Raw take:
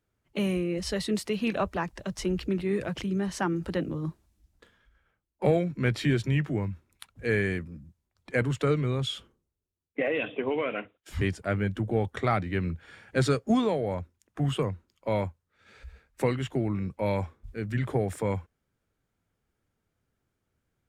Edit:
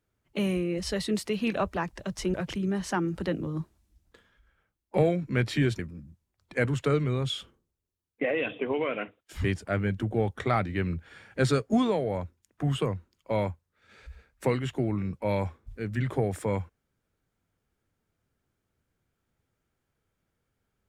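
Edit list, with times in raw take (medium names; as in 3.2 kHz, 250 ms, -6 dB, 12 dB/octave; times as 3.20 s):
2.34–2.82 s: delete
6.27–7.56 s: delete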